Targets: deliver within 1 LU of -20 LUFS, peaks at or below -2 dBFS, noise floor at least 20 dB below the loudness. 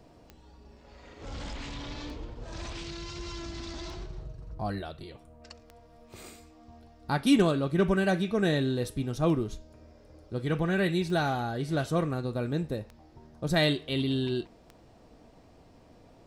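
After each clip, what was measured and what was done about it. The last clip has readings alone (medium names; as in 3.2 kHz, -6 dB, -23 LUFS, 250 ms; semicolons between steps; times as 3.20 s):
clicks found 9; loudness -30.0 LUFS; peak level -13.0 dBFS; loudness target -20.0 LUFS
-> de-click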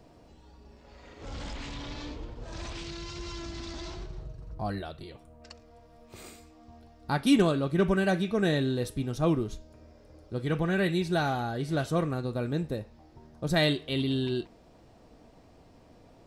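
clicks found 0; loudness -30.0 LUFS; peak level -13.0 dBFS; loudness target -20.0 LUFS
-> trim +10 dB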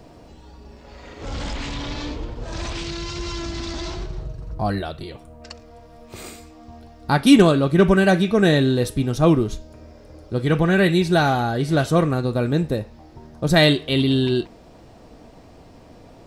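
loudness -20.0 LUFS; peak level -3.0 dBFS; noise floor -46 dBFS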